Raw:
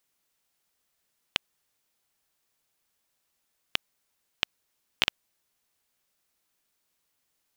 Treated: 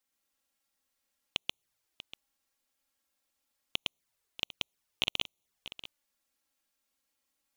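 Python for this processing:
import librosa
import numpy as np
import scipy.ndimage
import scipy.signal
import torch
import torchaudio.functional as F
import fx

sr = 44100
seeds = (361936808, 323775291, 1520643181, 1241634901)

y = fx.reverse_delay(x, sr, ms=119, wet_db=-2)
y = fx.env_flanger(y, sr, rest_ms=3.9, full_db=-39.0)
y = y + 10.0 ** (-14.0 / 20.0) * np.pad(y, (int(640 * sr / 1000.0), 0))[:len(y)]
y = F.gain(torch.from_numpy(y), -3.5).numpy()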